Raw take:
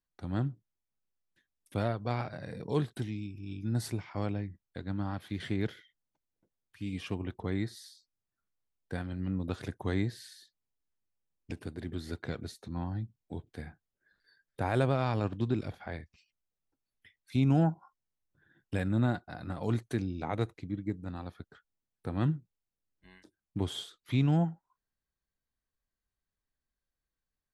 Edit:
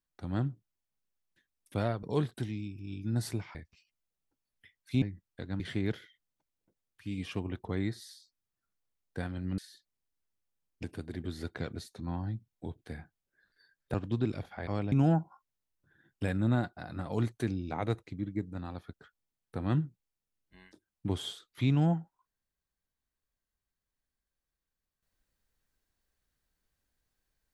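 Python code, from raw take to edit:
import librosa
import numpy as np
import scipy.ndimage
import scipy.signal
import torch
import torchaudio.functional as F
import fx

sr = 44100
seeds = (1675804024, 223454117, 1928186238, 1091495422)

y = fx.edit(x, sr, fx.cut(start_s=2.03, length_s=0.59),
    fx.swap(start_s=4.14, length_s=0.25, other_s=15.96, other_length_s=1.47),
    fx.cut(start_s=4.97, length_s=0.38),
    fx.cut(start_s=9.33, length_s=0.93),
    fx.cut(start_s=14.62, length_s=0.61), tone=tone)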